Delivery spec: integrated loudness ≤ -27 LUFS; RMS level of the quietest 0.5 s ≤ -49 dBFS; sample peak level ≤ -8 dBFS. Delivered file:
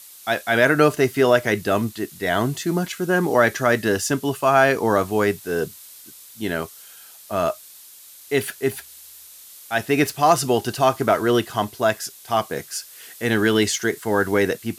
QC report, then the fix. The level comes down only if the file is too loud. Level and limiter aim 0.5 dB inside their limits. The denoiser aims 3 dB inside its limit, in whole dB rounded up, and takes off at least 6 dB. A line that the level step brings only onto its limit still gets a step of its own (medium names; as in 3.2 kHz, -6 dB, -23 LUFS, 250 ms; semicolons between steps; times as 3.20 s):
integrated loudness -21.0 LUFS: fail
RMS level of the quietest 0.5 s -45 dBFS: fail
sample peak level -3.0 dBFS: fail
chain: trim -6.5 dB